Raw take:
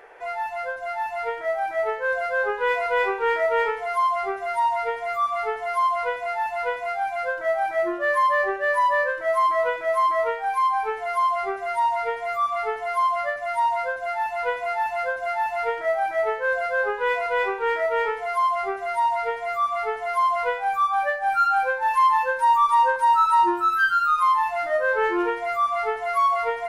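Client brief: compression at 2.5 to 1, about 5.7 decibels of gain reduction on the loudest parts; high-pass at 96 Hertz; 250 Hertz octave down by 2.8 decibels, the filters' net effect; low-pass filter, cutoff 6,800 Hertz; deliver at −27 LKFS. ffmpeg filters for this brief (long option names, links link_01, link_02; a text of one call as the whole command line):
ffmpeg -i in.wav -af "highpass=96,lowpass=6800,equalizer=frequency=250:width_type=o:gain=-5.5,acompressor=threshold=-24dB:ratio=2.5,volume=-0.5dB" out.wav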